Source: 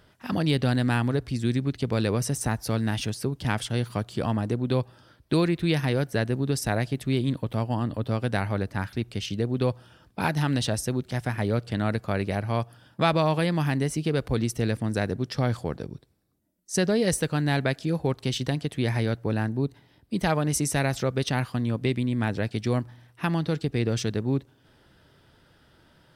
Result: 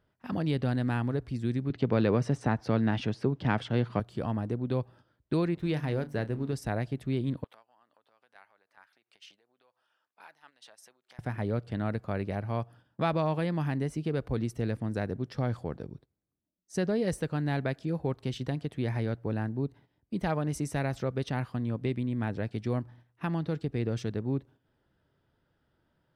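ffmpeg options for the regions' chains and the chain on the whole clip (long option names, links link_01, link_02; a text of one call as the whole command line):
ffmpeg -i in.wav -filter_complex "[0:a]asettb=1/sr,asplit=3[link_01][link_02][link_03];[link_01]atrim=end=1.704[link_04];[link_02]atrim=start=1.7:end=4,asetpts=PTS-STARTPTS,afade=type=in:duration=0.004:curve=qsin,afade=type=out:start_time=2.296:duration=0.004:curve=qsin,acontrast=63,highpass=120,lowpass=4100[link_05];[link_03]atrim=start=3.996[link_06];[link_04][link_05]acrossfade=duration=0.004:curve1=hsin:curve2=qsin[link_07];[link_07][link_06]acrossfade=duration=0.004:curve1=qsin:curve2=hsin,asettb=1/sr,asplit=3[link_08][link_09][link_10];[link_08]atrim=end=5.544[link_11];[link_09]atrim=start=5.54:end=6.53,asetpts=PTS-STARTPTS,afade=type=in:duration=0.004:curve=qsin,afade=type=out:start_time=0.986:duration=0.004:curve=qsin,bandreject=frequency=48.6:width_type=h:width=4,bandreject=frequency=97.2:width_type=h:width=4,bandreject=frequency=145.8:width_type=h:width=4,bandreject=frequency=194.4:width_type=h:width=4,bandreject=frequency=243:width_type=h:width=4,bandreject=frequency=291.6:width_type=h:width=4,aeval=exprs='sgn(val(0))*max(abs(val(0))-0.00473,0)':channel_layout=same,asplit=2[link_12][link_13];[link_13]adelay=33,volume=-14dB[link_14];[link_12][link_14]amix=inputs=2:normalize=0,atrim=end_sample=43659[link_15];[link_10]atrim=start=6.526[link_16];[link_11][link_15]acrossfade=duration=0.004:curve1=hsin:curve2=qsin[link_17];[link_17][link_16]acrossfade=duration=0.004:curve1=qsin:curve2=hsin,asettb=1/sr,asplit=3[link_18][link_19][link_20];[link_18]atrim=end=7.444[link_21];[link_19]atrim=start=7.44:end=11.19,asetpts=PTS-STARTPTS,afade=type=in:duration=0.004:curve=qsin,afade=type=out:start_time=3.746:duration=0.004:curve=qsin,acompressor=threshold=-34dB:ratio=12:attack=3.2:release=140:knee=1:detection=peak,highpass=960[link_22];[link_20]atrim=start=11.186[link_23];[link_21][link_22]acrossfade=duration=0.004:curve1=hsin:curve2=qsin[link_24];[link_24][link_23]acrossfade=duration=0.004:curve1=qsin:curve2=hsin,agate=range=-9dB:threshold=-47dB:ratio=16:detection=peak,highshelf=frequency=2800:gain=-11.5,volume=-5dB" out.wav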